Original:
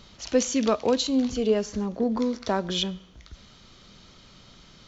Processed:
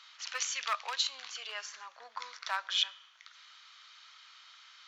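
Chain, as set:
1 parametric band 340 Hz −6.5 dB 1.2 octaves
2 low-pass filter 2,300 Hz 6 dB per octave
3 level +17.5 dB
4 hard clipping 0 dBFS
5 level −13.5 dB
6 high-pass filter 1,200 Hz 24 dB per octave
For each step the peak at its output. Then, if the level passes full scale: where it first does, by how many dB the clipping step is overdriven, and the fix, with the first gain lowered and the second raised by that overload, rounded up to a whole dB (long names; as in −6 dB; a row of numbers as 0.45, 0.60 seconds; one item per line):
−11.5, −12.0, +5.5, 0.0, −13.5, −15.0 dBFS
step 3, 5.5 dB
step 3 +11.5 dB, step 5 −7.5 dB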